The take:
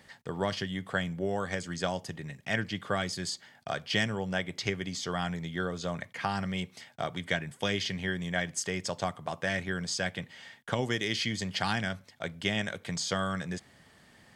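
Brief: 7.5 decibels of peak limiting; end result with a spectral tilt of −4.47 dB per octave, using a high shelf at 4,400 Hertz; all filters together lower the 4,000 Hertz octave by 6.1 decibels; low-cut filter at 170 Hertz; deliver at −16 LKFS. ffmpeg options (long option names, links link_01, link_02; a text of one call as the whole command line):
ffmpeg -i in.wav -af "highpass=170,equalizer=frequency=4000:width_type=o:gain=-4.5,highshelf=frequency=4400:gain=-7,volume=21dB,alimiter=limit=-1.5dB:level=0:latency=1" out.wav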